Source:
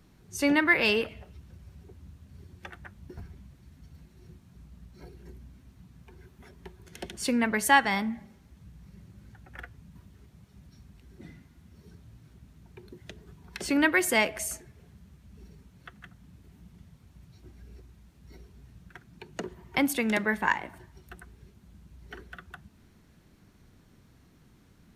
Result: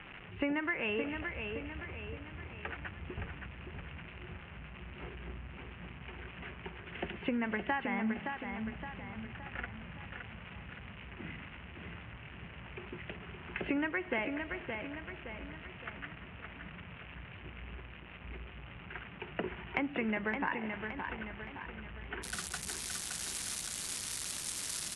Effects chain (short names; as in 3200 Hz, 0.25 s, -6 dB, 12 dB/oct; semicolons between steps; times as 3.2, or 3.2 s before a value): switching spikes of -25 dBFS; steep low-pass 2900 Hz 72 dB/oct, from 22.22 s 11000 Hz; compressor 16:1, threshold -31 dBFS, peak gain reduction 17.5 dB; feedback echo 0.568 s, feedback 49%, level -6 dB; gain +1 dB